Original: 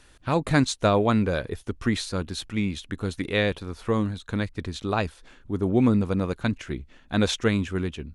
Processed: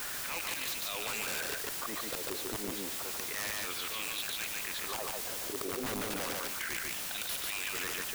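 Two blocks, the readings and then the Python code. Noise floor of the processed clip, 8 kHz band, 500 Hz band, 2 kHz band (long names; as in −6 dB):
−39 dBFS, +4.0 dB, −15.0 dB, −5.0 dB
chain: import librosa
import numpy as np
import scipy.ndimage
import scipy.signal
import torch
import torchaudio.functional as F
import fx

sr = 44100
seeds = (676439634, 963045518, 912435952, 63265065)

p1 = fx.rattle_buzz(x, sr, strikes_db=-30.0, level_db=-26.0)
p2 = scipy.signal.sosfilt(scipy.signal.butter(2, 310.0, 'highpass', fs=sr, output='sos'), p1)
p3 = fx.auto_swell(p2, sr, attack_ms=372.0)
p4 = fx.rider(p3, sr, range_db=4, speed_s=0.5)
p5 = p3 + (p4 * librosa.db_to_amplitude(2.5))
p6 = fx.transient(p5, sr, attack_db=2, sustain_db=-6)
p7 = fx.wah_lfo(p6, sr, hz=0.31, low_hz=440.0, high_hz=3500.0, q=2.2)
p8 = 10.0 ** (-25.0 / 20.0) * np.tanh(p7 / 10.0 ** (-25.0 / 20.0))
p9 = fx.quant_dither(p8, sr, seeds[0], bits=8, dither='triangular')
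p10 = (np.mod(10.0 ** (32.0 / 20.0) * p9 + 1.0, 2.0) - 1.0) / 10.0 ** (32.0 / 20.0)
p11 = p10 + fx.echo_single(p10, sr, ms=145, db=-3.5, dry=0)
y = fx.env_flatten(p11, sr, amount_pct=70)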